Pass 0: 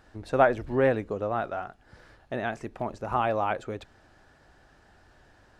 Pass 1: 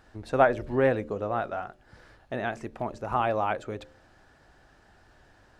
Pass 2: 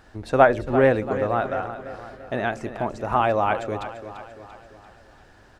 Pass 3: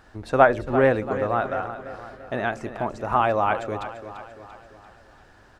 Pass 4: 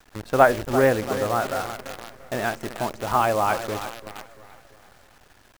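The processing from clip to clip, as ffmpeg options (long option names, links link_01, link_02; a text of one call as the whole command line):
ffmpeg -i in.wav -af "bandreject=frequency=74.68:width_type=h:width=4,bandreject=frequency=149.36:width_type=h:width=4,bandreject=frequency=224.04:width_type=h:width=4,bandreject=frequency=298.72:width_type=h:width=4,bandreject=frequency=373.4:width_type=h:width=4,bandreject=frequency=448.08:width_type=h:width=4,bandreject=frequency=522.76:width_type=h:width=4,bandreject=frequency=597.44:width_type=h:width=4" out.wav
ffmpeg -i in.wav -af "aecho=1:1:341|682|1023|1364|1705:0.251|0.128|0.0653|0.0333|0.017,volume=5.5dB" out.wav
ffmpeg -i in.wav -af "equalizer=frequency=1200:width=1.5:gain=3,volume=-1.5dB" out.wav
ffmpeg -i in.wav -af "acrusher=bits=6:dc=4:mix=0:aa=0.000001" out.wav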